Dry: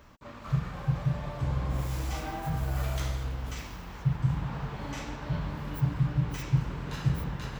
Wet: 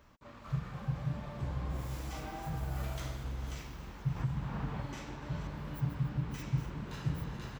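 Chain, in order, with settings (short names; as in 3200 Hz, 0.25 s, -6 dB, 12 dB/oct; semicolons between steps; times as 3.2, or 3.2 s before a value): reverse delay 0.325 s, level -10 dB; frequency-shifting echo 0.284 s, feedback 61%, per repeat +74 Hz, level -17.5 dB; 4.16–4.82 three-band squash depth 100%; gain -7 dB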